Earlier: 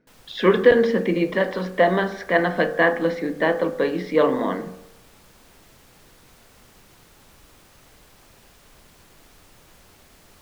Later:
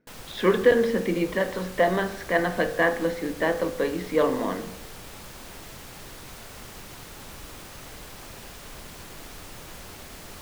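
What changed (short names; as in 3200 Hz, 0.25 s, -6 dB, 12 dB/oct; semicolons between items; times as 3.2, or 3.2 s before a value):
speech -4.0 dB; background +10.0 dB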